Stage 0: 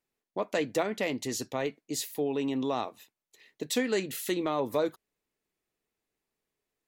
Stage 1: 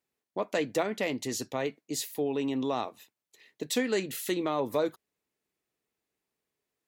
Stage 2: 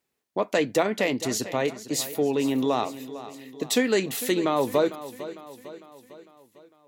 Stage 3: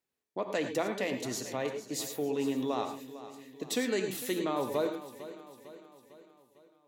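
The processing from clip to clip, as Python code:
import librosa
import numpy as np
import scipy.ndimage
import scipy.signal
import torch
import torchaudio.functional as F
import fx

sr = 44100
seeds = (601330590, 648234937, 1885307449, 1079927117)

y1 = scipy.signal.sosfilt(scipy.signal.butter(2, 63.0, 'highpass', fs=sr, output='sos'), x)
y2 = fx.echo_feedback(y1, sr, ms=452, feedback_pct=53, wet_db=-14.5)
y2 = y2 * librosa.db_to_amplitude(6.0)
y3 = fx.rev_gated(y2, sr, seeds[0], gate_ms=130, shape='rising', drr_db=6.5)
y3 = y3 * librosa.db_to_amplitude(-9.0)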